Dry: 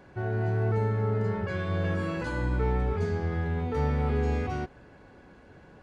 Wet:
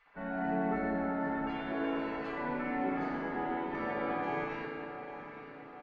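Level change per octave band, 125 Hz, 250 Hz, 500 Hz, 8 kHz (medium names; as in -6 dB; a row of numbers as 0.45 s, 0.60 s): -20.0 dB, -1.0 dB, -5.5 dB, no reading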